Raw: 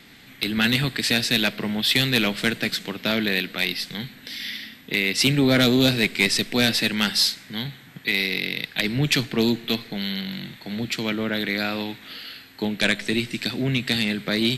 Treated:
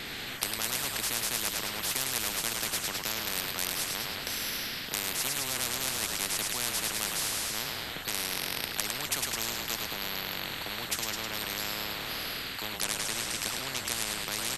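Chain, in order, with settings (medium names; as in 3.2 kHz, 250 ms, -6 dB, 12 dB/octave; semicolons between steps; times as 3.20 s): frequency-shifting echo 105 ms, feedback 50%, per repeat -37 Hz, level -9 dB; spectrum-flattening compressor 10:1; trim -2 dB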